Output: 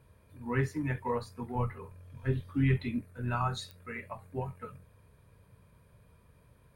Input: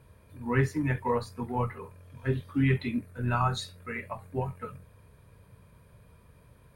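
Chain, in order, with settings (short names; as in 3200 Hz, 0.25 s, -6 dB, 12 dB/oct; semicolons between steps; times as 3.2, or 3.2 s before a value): 1.55–3.02 low shelf 98 Hz +9.5 dB; pops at 3.71, -25 dBFS; gain -4.5 dB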